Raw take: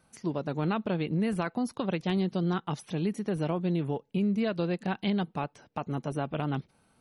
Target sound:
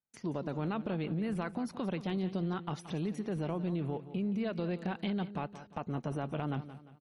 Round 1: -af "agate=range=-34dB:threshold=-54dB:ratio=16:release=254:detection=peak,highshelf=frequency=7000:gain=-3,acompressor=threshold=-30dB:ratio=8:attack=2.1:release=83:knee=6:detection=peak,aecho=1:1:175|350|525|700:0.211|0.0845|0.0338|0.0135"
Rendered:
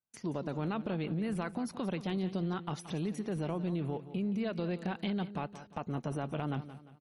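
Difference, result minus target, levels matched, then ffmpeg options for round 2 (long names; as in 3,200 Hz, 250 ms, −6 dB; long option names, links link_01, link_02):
8,000 Hz band +4.5 dB
-af "agate=range=-34dB:threshold=-54dB:ratio=16:release=254:detection=peak,highshelf=frequency=7000:gain=-11,acompressor=threshold=-30dB:ratio=8:attack=2.1:release=83:knee=6:detection=peak,aecho=1:1:175|350|525|700:0.211|0.0845|0.0338|0.0135"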